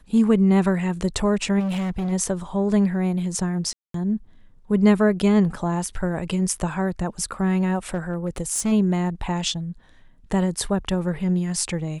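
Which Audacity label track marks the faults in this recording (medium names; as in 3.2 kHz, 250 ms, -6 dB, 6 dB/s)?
1.590000	2.130000	clipped -22 dBFS
3.730000	3.940000	dropout 213 ms
7.940000	8.730000	clipped -18 dBFS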